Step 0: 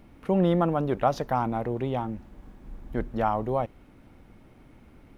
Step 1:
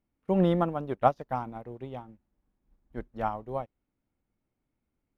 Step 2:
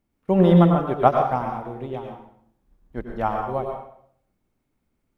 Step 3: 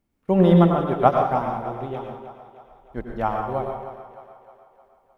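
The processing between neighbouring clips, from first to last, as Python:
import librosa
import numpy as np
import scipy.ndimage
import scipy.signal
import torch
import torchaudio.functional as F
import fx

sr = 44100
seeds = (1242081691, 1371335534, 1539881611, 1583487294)

y1 = fx.upward_expand(x, sr, threshold_db=-40.0, expansion=2.5)
y1 = y1 * librosa.db_to_amplitude(2.5)
y2 = fx.rev_plate(y1, sr, seeds[0], rt60_s=0.62, hf_ratio=0.9, predelay_ms=85, drr_db=2.0)
y2 = y2 * librosa.db_to_amplitude(6.0)
y3 = fx.echo_split(y2, sr, split_hz=410.0, low_ms=158, high_ms=308, feedback_pct=52, wet_db=-12.5)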